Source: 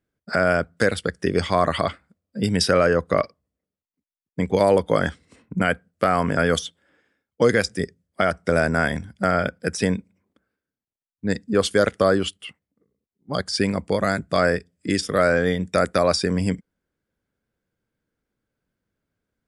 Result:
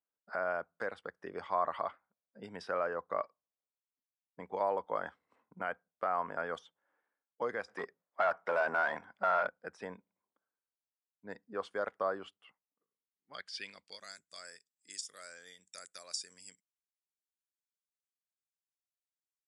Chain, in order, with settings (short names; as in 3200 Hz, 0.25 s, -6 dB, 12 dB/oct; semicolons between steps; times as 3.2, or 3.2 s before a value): 7.68–9.47 overdrive pedal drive 21 dB, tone 3100 Hz, clips at -6 dBFS; band-pass sweep 940 Hz -> 7300 Hz, 12.7–14.27; gain -7.5 dB